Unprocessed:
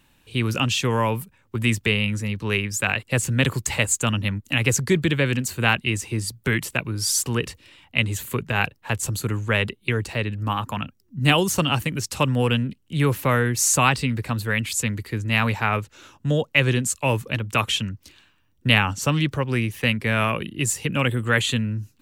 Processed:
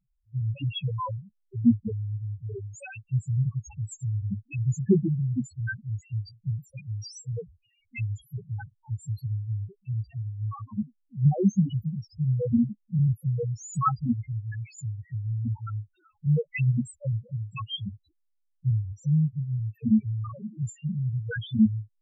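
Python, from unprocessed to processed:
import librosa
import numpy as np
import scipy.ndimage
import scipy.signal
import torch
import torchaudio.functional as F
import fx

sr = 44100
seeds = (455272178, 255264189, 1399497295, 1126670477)

y = fx.spec_topn(x, sr, count=1)
y = fx.small_body(y, sr, hz=(210.0, 1300.0, 2100.0, 3300.0), ring_ms=55, db=10)
y = fx.upward_expand(y, sr, threshold_db=-38.0, expansion=1.5)
y = y * 10.0 ** (5.5 / 20.0)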